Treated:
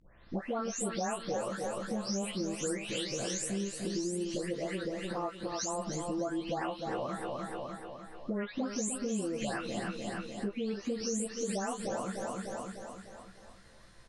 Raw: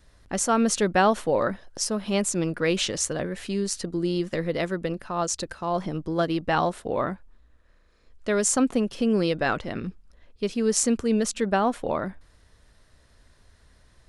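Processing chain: delay that grows with frequency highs late, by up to 417 ms; low-pass 10 kHz 12 dB/octave; bass shelf 150 Hz -4.5 dB; doubling 15 ms -5.5 dB; feedback delay 300 ms, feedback 48%, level -8 dB; compression 5:1, threshold -34 dBFS, peak gain reduction 17 dB; dynamic bell 1.6 kHz, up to -3 dB, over -50 dBFS, Q 0.71; trim +1.5 dB

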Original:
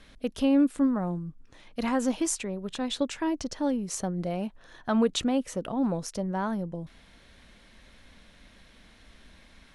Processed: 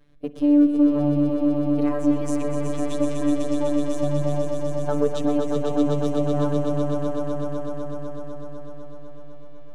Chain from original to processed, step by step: companding laws mixed up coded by A; robot voice 146 Hz; tilt shelf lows +7.5 dB, about 1.1 kHz; echo with a slow build-up 125 ms, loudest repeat 5, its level -6.5 dB; spring tank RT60 3.9 s, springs 48 ms, chirp 50 ms, DRR 11.5 dB

